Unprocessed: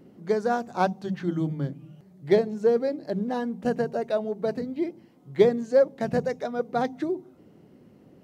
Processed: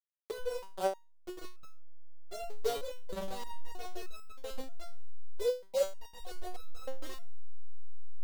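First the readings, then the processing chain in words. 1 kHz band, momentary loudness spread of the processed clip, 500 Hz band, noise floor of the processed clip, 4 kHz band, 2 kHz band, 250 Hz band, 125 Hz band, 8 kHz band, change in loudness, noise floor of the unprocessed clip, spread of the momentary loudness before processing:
−13.0 dB, 16 LU, −13.0 dB, −55 dBFS, −3.0 dB, −14.0 dB, −24.0 dB, below −15 dB, can't be measured, −13.0 dB, −55 dBFS, 10 LU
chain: hold until the input has moved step −20 dBFS
octave-band graphic EQ 125/250/500/2,000/4,000 Hz −12/−7/+9/−4/+3 dB
in parallel at −2.5 dB: output level in coarse steps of 15 dB
on the sum: time-frequency box erased 0:05.52–0:05.77, 970–2,000 Hz
step-sequenced resonator 3.2 Hz 140–1,300 Hz
level −2.5 dB

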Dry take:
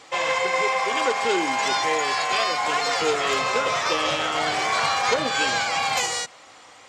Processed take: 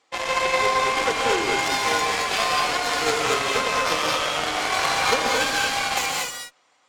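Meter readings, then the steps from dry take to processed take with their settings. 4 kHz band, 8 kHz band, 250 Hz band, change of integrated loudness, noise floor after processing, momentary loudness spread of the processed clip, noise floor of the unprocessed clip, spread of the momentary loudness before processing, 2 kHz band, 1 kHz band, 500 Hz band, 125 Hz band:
+1.5 dB, +2.0 dB, 0.0 dB, +0.5 dB, −63 dBFS, 3 LU, −48 dBFS, 2 LU, +1.0 dB, 0.0 dB, 0.0 dB, +2.0 dB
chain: high-pass filter 150 Hz 12 dB per octave
harmonic generator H 7 −18 dB, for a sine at −8.5 dBFS
reverb whose tail is shaped and stops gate 260 ms rising, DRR −0.5 dB

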